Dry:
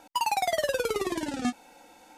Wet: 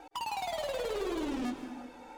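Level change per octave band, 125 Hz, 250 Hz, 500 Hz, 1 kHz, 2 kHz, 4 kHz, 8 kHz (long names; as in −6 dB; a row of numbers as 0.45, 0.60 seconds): −5.0, −3.0, −5.5, −8.0, −9.0, −6.5, −11.0 decibels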